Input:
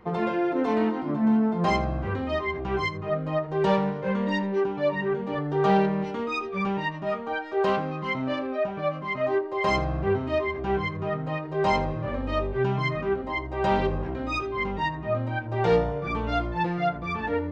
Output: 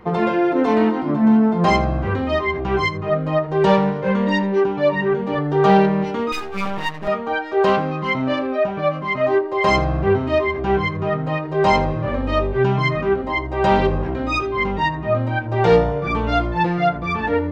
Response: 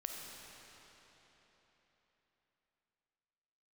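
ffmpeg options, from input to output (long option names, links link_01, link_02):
-filter_complex "[0:a]asettb=1/sr,asplit=3[link_01][link_02][link_03];[link_01]atrim=end=6.324[link_04];[link_02]atrim=start=6.32:end=7.08,asetpts=PTS-STARTPTS,afade=type=in:duration=0.004:curve=qsin,afade=type=out:start_time=0.756:duration=0.004:curve=qsin,aeval=exprs='max(val(0),0)':channel_layout=same[link_05];[link_03]atrim=start=7.076[link_06];[link_04][link_05]acrossfade=duration=0.004:curve1=hsin:curve2=qsin[link_07];[link_07][link_06]acrossfade=duration=0.004:curve1=qsin:curve2=hsin,volume=7.5dB"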